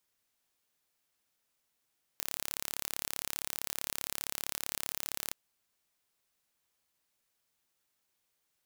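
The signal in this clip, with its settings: pulse train 35.3/s, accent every 0, -8 dBFS 3.12 s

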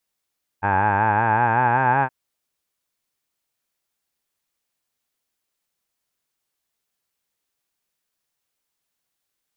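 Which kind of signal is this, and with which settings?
formant vowel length 1.47 s, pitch 95.7 Hz, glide +6 st, F1 860 Hz, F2 1600 Hz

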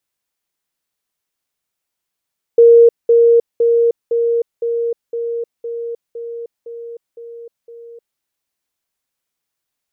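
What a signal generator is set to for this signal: level ladder 467 Hz -3.5 dBFS, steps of -3 dB, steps 11, 0.31 s 0.20 s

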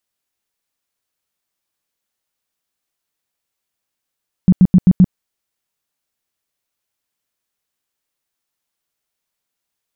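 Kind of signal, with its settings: tone bursts 183 Hz, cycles 8, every 0.13 s, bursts 5, -4 dBFS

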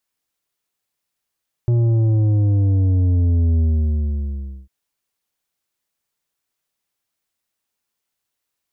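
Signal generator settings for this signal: sub drop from 120 Hz, over 3.00 s, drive 8 dB, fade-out 1.08 s, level -14 dB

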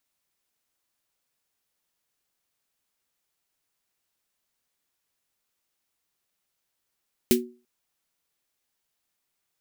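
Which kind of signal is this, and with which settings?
snare drum length 0.34 s, tones 240 Hz, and 370 Hz, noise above 1900 Hz, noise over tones -3 dB, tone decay 0.35 s, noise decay 0.14 s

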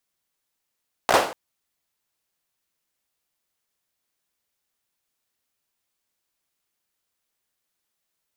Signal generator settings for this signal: hand clap length 0.24 s, apart 16 ms, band 640 Hz, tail 0.46 s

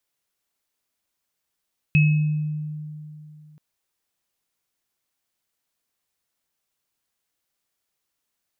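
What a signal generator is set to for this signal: sine partials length 1.63 s, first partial 152 Hz, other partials 2570 Hz, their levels -6 dB, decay 2.80 s, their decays 0.72 s, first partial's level -12.5 dB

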